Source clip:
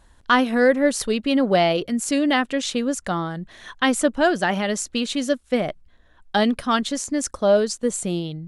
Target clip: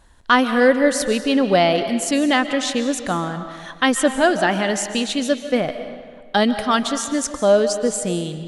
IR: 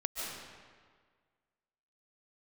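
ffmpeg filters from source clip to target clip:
-filter_complex "[0:a]asplit=2[s0][s1];[1:a]atrim=start_sample=2205,lowshelf=f=220:g=-10[s2];[s1][s2]afir=irnorm=-1:irlink=0,volume=0.398[s3];[s0][s3]amix=inputs=2:normalize=0"

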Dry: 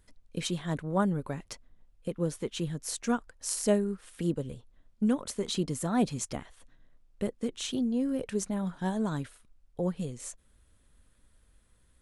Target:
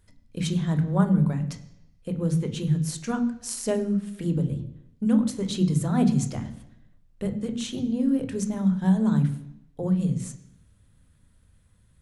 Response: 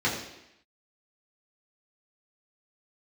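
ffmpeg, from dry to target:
-filter_complex "[0:a]asplit=2[s0][s1];[s1]lowshelf=f=250:t=q:w=1.5:g=13[s2];[1:a]atrim=start_sample=2205,adelay=20[s3];[s2][s3]afir=irnorm=-1:irlink=0,volume=0.112[s4];[s0][s4]amix=inputs=2:normalize=0"

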